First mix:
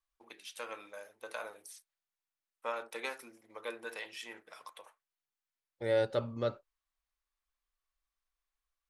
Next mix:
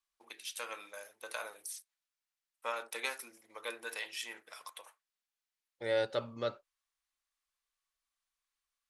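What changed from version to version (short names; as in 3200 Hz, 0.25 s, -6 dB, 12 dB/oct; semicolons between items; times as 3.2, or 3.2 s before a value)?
second voice: add air absorption 59 m; master: add tilt +2.5 dB/oct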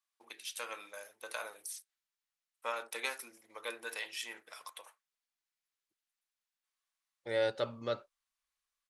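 second voice: entry +1.45 s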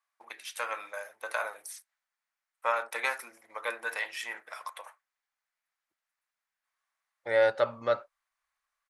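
master: add band shelf 1100 Hz +10 dB 2.3 oct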